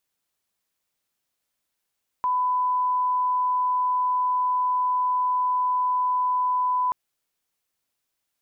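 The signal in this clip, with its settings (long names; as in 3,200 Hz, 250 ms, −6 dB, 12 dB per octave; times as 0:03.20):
line-up tone −20 dBFS 4.68 s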